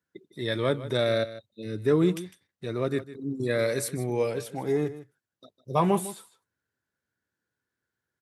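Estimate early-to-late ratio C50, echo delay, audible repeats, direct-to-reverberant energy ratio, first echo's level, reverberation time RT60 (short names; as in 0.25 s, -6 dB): none, 0.154 s, 1, none, -15.0 dB, none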